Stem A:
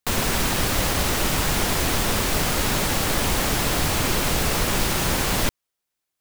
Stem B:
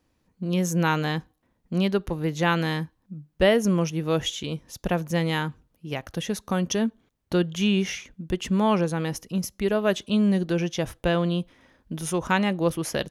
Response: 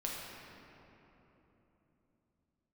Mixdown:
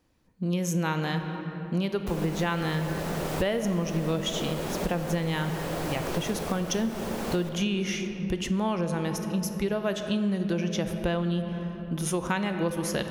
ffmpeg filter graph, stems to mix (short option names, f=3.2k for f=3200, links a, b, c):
-filter_complex "[0:a]equalizer=f=500:w=0.64:g=13.5,adelay=2000,volume=-10dB,asplit=2[a][b];[b]volume=-16.5dB[c];[1:a]volume=-2dB,asplit=3[d][e][f];[e]volume=-6.5dB[g];[f]apad=whole_len=361914[h];[a][h]sidechaincompress=threshold=-37dB:ratio=8:attack=45:release=1020[i];[2:a]atrim=start_sample=2205[j];[c][g]amix=inputs=2:normalize=0[k];[k][j]afir=irnorm=-1:irlink=0[l];[i][d][l]amix=inputs=3:normalize=0,acompressor=threshold=-24dB:ratio=5"